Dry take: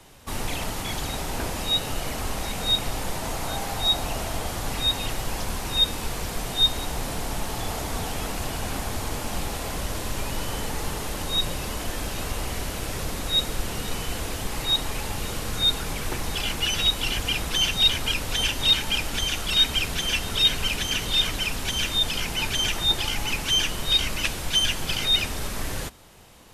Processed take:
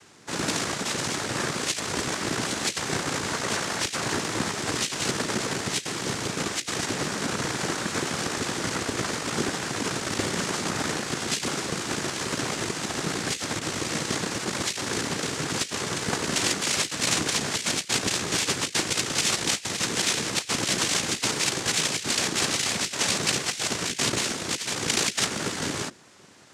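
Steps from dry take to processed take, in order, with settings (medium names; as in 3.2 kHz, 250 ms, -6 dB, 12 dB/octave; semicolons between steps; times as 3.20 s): treble shelf 2.8 kHz +3 dB; compressor with a negative ratio -24 dBFS, ratio -0.5; frequency shift +50 Hz; Chebyshev shaper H 3 -14 dB, 5 -26 dB, 6 -10 dB, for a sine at -8 dBFS; noise-vocoded speech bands 3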